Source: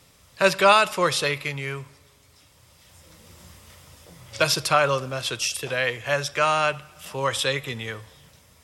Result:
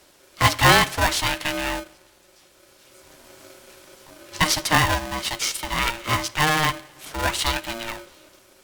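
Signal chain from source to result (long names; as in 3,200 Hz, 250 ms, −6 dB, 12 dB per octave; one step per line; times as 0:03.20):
0:01.40–0:01.80: leveller curve on the samples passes 1
ring modulator with a square carrier 460 Hz
level +1 dB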